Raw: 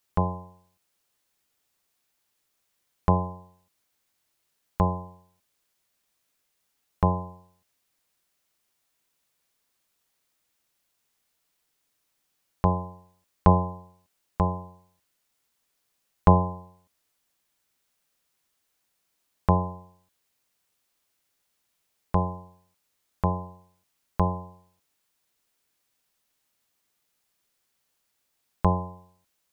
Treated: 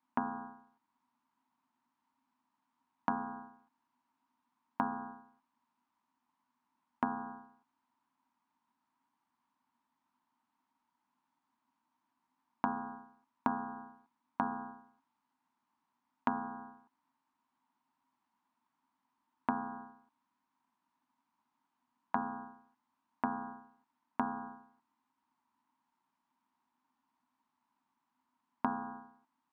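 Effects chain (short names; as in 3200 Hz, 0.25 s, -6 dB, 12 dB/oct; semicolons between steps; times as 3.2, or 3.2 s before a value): ring modulator 610 Hz; compressor 12:1, threshold -33 dBFS, peak gain reduction 20.5 dB; double band-pass 490 Hz, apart 1.9 oct; gain +15.5 dB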